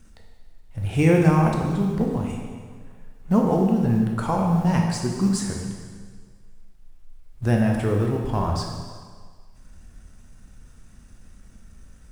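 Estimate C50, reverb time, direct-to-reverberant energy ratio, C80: 2.5 dB, 1.7 s, 0.0 dB, 4.5 dB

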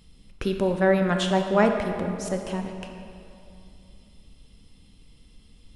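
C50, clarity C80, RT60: 5.0 dB, 6.0 dB, 2.7 s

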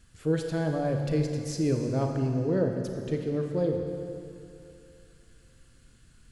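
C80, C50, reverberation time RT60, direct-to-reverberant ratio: 5.0 dB, 4.0 dB, 2.7 s, 3.0 dB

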